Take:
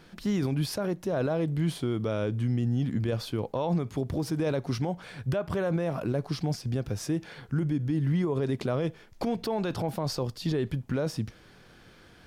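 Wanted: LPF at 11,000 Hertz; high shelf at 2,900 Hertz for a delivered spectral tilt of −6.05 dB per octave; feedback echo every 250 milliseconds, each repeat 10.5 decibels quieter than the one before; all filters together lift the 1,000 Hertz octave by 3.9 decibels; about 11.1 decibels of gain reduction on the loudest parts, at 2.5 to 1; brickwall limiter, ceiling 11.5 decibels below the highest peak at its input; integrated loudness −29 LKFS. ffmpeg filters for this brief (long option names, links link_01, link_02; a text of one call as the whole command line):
ffmpeg -i in.wav -af "lowpass=11000,equalizer=frequency=1000:width_type=o:gain=5.5,highshelf=frequency=2900:gain=-3,acompressor=threshold=-41dB:ratio=2.5,alimiter=level_in=14dB:limit=-24dB:level=0:latency=1,volume=-14dB,aecho=1:1:250|500|750:0.299|0.0896|0.0269,volume=17dB" out.wav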